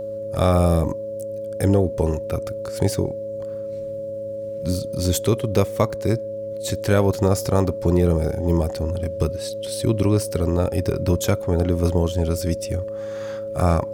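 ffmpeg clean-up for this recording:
-af "bandreject=f=105.4:t=h:w=4,bandreject=f=210.8:t=h:w=4,bandreject=f=316.2:t=h:w=4,bandreject=f=421.6:t=h:w=4,bandreject=f=527:t=h:w=4,bandreject=f=550:w=30"

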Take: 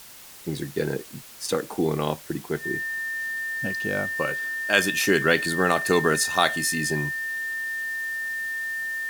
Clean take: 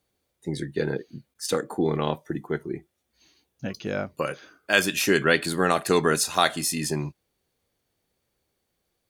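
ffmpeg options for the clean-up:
-af "bandreject=f=1800:w=30,afwtdn=0.0056"

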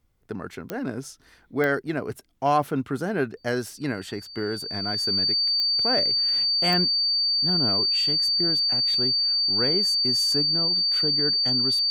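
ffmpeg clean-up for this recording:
-af "adeclick=t=4,bandreject=f=4600:w=30"

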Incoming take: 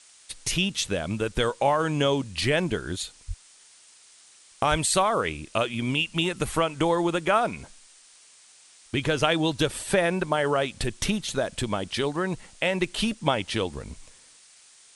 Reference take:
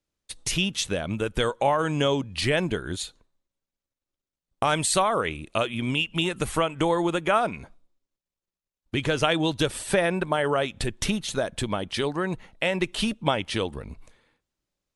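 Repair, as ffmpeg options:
-filter_complex "[0:a]asplit=3[s0][s1][s2];[s0]afade=t=out:st=3.27:d=0.02[s3];[s1]highpass=f=140:w=0.5412,highpass=f=140:w=1.3066,afade=t=in:st=3.27:d=0.02,afade=t=out:st=3.39:d=0.02[s4];[s2]afade=t=in:st=3.39:d=0.02[s5];[s3][s4][s5]amix=inputs=3:normalize=0,asplit=3[s6][s7][s8];[s6]afade=t=out:st=4.7:d=0.02[s9];[s7]highpass=f=140:w=0.5412,highpass=f=140:w=1.3066,afade=t=in:st=4.7:d=0.02,afade=t=out:st=4.82:d=0.02[s10];[s8]afade=t=in:st=4.82:d=0.02[s11];[s9][s10][s11]amix=inputs=3:normalize=0,afftdn=nr=30:nf=-54"

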